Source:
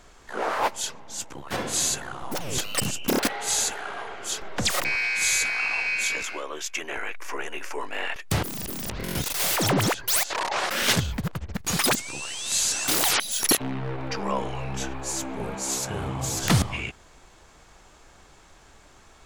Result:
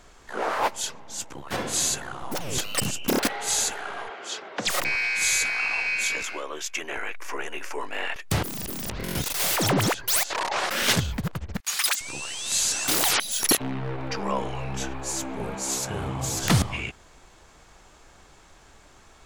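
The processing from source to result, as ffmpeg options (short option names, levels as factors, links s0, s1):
-filter_complex "[0:a]asplit=3[s0][s1][s2];[s0]afade=t=out:st=4.08:d=0.02[s3];[s1]highpass=270,lowpass=5200,afade=t=in:st=4.08:d=0.02,afade=t=out:st=4.66:d=0.02[s4];[s2]afade=t=in:st=4.66:d=0.02[s5];[s3][s4][s5]amix=inputs=3:normalize=0,asettb=1/sr,asplit=3[s6][s7][s8];[s6]atrim=end=11.604[s9];[s7]atrim=start=11.6:end=12.01,asetpts=PTS-STARTPTS,afade=t=in:d=0.004:c=qsin,afade=t=out:st=0.406:d=0.004:c=qsin,highpass=1400[s10];[s8]atrim=start=12.006[s11];[s9][s10]acrossfade=d=0.004:c1=hsin:c2=qsin[s12];[s12][s11]acrossfade=d=0.004:c1=qsin:c2=hsin"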